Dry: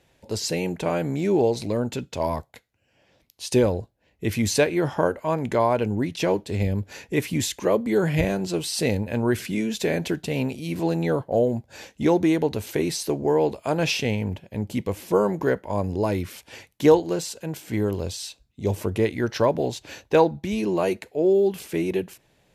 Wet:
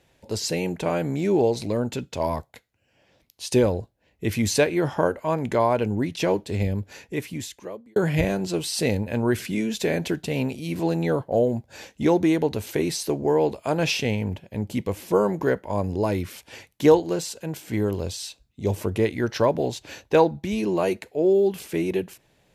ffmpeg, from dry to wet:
ffmpeg -i in.wav -filter_complex "[0:a]asplit=2[link_01][link_02];[link_01]atrim=end=7.96,asetpts=PTS-STARTPTS,afade=type=out:start_time=6.55:duration=1.41[link_03];[link_02]atrim=start=7.96,asetpts=PTS-STARTPTS,afade=type=in:duration=0.004:curve=hsin[link_04];[link_03][link_04]concat=n=2:v=0:a=1" out.wav

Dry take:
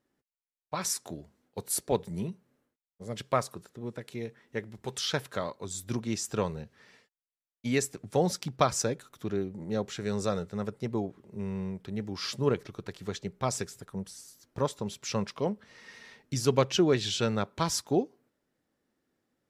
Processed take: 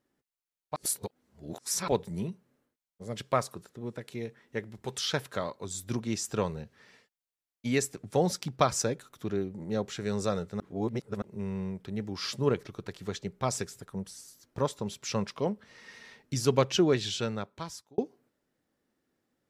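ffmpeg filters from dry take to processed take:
ffmpeg -i in.wav -filter_complex "[0:a]asplit=6[link_01][link_02][link_03][link_04][link_05][link_06];[link_01]atrim=end=0.762[link_07];[link_02]atrim=start=0.758:end=1.882,asetpts=PTS-STARTPTS,areverse[link_08];[link_03]atrim=start=1.878:end=10.602[link_09];[link_04]atrim=start=10.598:end=11.222,asetpts=PTS-STARTPTS,areverse[link_10];[link_05]atrim=start=11.218:end=17.98,asetpts=PTS-STARTPTS,afade=type=out:start_time=5.642:duration=1.12[link_11];[link_06]atrim=start=17.98,asetpts=PTS-STARTPTS,afade=type=in:duration=0.004:curve=hsin[link_12];[link_07][link_08]acrossfade=duration=0.004:curve1=hsin:curve2=hsin[link_13];[link_13][link_09]acrossfade=duration=0.004:curve1=hsin:curve2=hsin[link_14];[link_14][link_10]acrossfade=duration=0.004:curve1=hsin:curve2=hsin[link_15];[link_11][link_12]concat=n=2:v=0:a=1[link_16];[link_15][link_16]acrossfade=duration=0.004:curve1=hsin:curve2=hsin" out.wav

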